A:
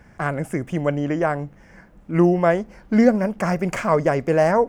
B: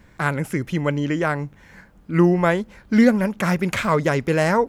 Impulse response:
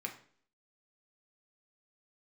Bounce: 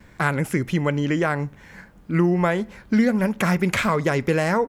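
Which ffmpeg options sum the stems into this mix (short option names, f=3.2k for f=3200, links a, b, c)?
-filter_complex "[0:a]equalizer=f=430:t=o:w=2.5:g=-9.5,volume=-15.5dB,asplit=2[a][b];[1:a]volume=-1,adelay=3.2,volume=2dB,asplit=2[c][d];[d]volume=-19dB[e];[b]apad=whole_len=206537[f];[c][f]sidechaincompress=threshold=-42dB:ratio=8:attack=39:release=217[g];[2:a]atrim=start_sample=2205[h];[e][h]afir=irnorm=-1:irlink=0[i];[a][g][i]amix=inputs=3:normalize=0"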